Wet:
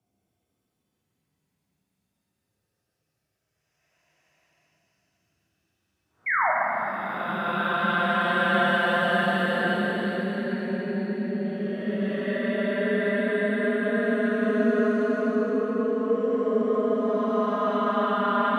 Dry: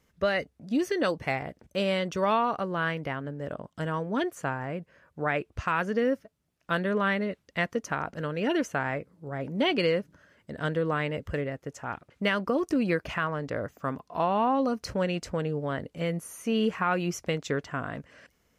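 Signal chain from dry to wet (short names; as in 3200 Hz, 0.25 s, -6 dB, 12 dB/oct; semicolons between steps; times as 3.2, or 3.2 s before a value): Paulstretch 34×, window 0.05 s, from 6.49; frequency shift +28 Hz; painted sound fall, 6.26–6.51, 580–2300 Hz -22 dBFS; plate-style reverb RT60 3.7 s, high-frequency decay 0.9×, DRR -5 dB; gain -4 dB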